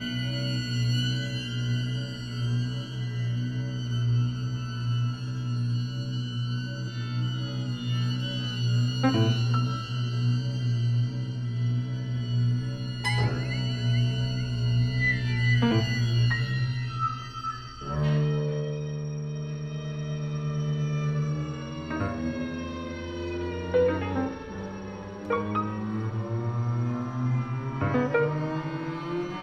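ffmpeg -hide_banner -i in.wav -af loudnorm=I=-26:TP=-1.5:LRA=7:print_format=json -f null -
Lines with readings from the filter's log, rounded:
"input_i" : "-28.6",
"input_tp" : "-11.5",
"input_lra" : "4.8",
"input_thresh" : "-38.6",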